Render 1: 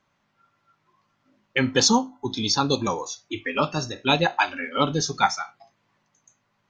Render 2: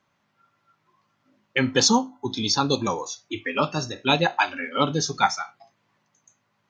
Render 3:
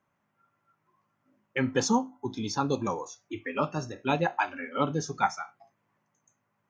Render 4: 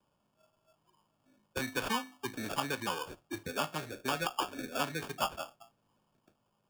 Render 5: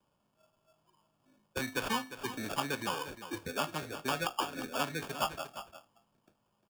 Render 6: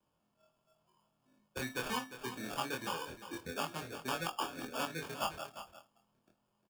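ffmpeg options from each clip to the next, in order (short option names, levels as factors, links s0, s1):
-af "highpass=66"
-af "equalizer=f=4100:w=1.2:g=-13.5,volume=0.596"
-filter_complex "[0:a]acrusher=samples=22:mix=1:aa=0.000001,acrossover=split=260|880|3900[s0][s1][s2][s3];[s0]acompressor=threshold=0.00501:ratio=4[s4];[s1]acompressor=threshold=0.00891:ratio=4[s5];[s2]acompressor=threshold=0.0282:ratio=4[s6];[s3]acompressor=threshold=0.00891:ratio=4[s7];[s4][s5][s6][s7]amix=inputs=4:normalize=0"
-af "aecho=1:1:352:0.251"
-filter_complex "[0:a]asplit=2[s0][s1];[s1]adelay=24,volume=0.794[s2];[s0][s2]amix=inputs=2:normalize=0,volume=0.531"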